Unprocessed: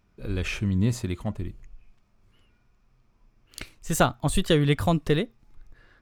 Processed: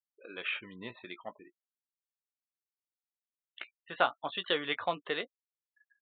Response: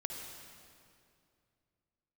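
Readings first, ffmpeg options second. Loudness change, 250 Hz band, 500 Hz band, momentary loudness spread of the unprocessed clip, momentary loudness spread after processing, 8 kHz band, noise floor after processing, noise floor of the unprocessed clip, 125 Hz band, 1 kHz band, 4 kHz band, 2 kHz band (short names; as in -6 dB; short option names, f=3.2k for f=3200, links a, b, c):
-9.0 dB, -19.5 dB, -9.5 dB, 16 LU, 17 LU, under -40 dB, under -85 dBFS, -66 dBFS, -30.0 dB, -4.5 dB, -3.5 dB, -2.5 dB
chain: -filter_complex "[0:a]highpass=700,afftfilt=real='re*gte(hypot(re,im),0.00794)':imag='im*gte(hypot(re,im),0.00794)':win_size=1024:overlap=0.75,acontrast=38,aresample=8000,aresample=44100,asplit=2[a][b];[b]adelay=17,volume=-10.5dB[c];[a][c]amix=inputs=2:normalize=0,volume=-8dB"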